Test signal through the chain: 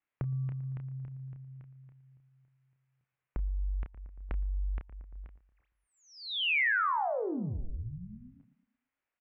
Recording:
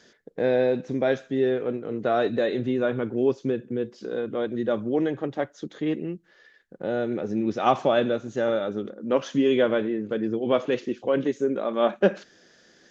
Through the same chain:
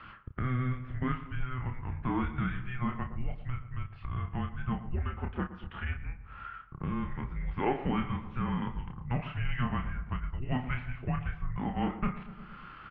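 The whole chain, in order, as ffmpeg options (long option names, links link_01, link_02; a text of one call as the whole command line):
ffmpeg -i in.wav -filter_complex "[0:a]acontrast=55,asplit=2[link_01][link_02];[link_02]adelay=30,volume=-6dB[link_03];[link_01][link_03]amix=inputs=2:normalize=0,highpass=frequency=320:width_type=q:width=0.5412,highpass=frequency=320:width_type=q:width=1.307,lowpass=frequency=2800:width_type=q:width=0.5176,lowpass=frequency=2800:width_type=q:width=0.7071,lowpass=frequency=2800:width_type=q:width=1.932,afreqshift=-380,asplit=2[link_04][link_05];[link_05]adelay=115,lowpass=frequency=1600:poles=1,volume=-15dB,asplit=2[link_06][link_07];[link_07]adelay=115,lowpass=frequency=1600:poles=1,volume=0.51,asplit=2[link_08][link_09];[link_09]adelay=115,lowpass=frequency=1600:poles=1,volume=0.51,asplit=2[link_10][link_11];[link_11]adelay=115,lowpass=frequency=1600:poles=1,volume=0.51,asplit=2[link_12][link_13];[link_13]adelay=115,lowpass=frequency=1600:poles=1,volume=0.51[link_14];[link_04][link_06][link_08][link_10][link_12][link_14]amix=inputs=6:normalize=0,acompressor=threshold=-41dB:ratio=2,tiltshelf=frequency=930:gain=-4.5,volume=4dB" out.wav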